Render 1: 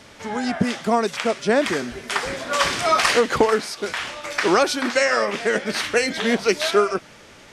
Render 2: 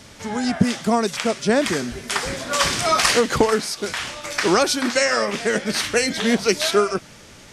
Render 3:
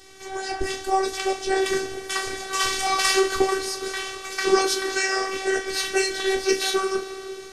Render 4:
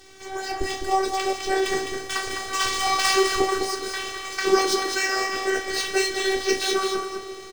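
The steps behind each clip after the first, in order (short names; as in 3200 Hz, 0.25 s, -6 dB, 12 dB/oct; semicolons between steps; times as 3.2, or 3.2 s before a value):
tone controls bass +7 dB, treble +7 dB; gain -1 dB
two-slope reverb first 0.22 s, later 4.7 s, from -22 dB, DRR 1 dB; robotiser 384 Hz; gain -3.5 dB
median filter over 3 samples; echo 0.207 s -6 dB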